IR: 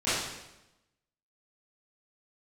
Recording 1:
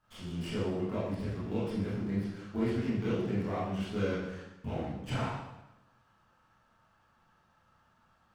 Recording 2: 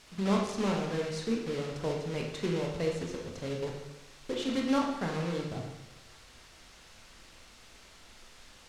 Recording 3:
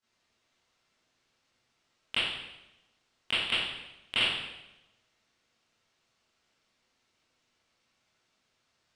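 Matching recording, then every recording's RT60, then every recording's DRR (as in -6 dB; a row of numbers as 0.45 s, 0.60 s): 3; 0.95 s, 0.95 s, 0.95 s; -9.5 dB, -0.5 dB, -16.5 dB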